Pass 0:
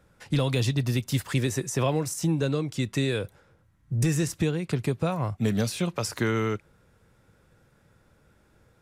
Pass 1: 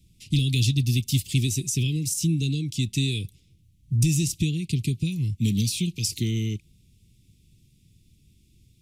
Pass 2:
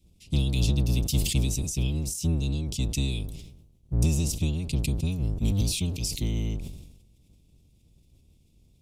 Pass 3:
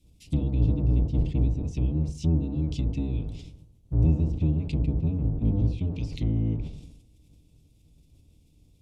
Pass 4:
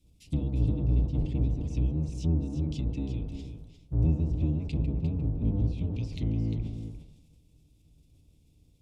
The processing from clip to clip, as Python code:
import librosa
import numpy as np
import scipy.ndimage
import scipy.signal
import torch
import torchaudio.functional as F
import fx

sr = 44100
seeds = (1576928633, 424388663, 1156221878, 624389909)

y1 = scipy.signal.sosfilt(scipy.signal.cheby2(4, 40, [570.0, 1700.0], 'bandstop', fs=sr, output='sos'), x)
y1 = fx.peak_eq(y1, sr, hz=430.0, db=-10.0, octaves=1.9)
y1 = y1 * 10.0 ** (6.0 / 20.0)
y2 = fx.octave_divider(y1, sr, octaves=1, level_db=3.0)
y2 = fx.sustainer(y2, sr, db_per_s=57.0)
y2 = y2 * 10.0 ** (-6.5 / 20.0)
y3 = fx.env_lowpass_down(y2, sr, base_hz=1000.0, full_db=-23.5)
y3 = fx.rev_fdn(y3, sr, rt60_s=0.44, lf_ratio=1.25, hf_ratio=0.25, size_ms=20.0, drr_db=7.0)
y4 = y3 + 10.0 ** (-9.0 / 20.0) * np.pad(y3, (int(351 * sr / 1000.0), 0))[:len(y3)]
y4 = y4 * 10.0 ** (-3.5 / 20.0)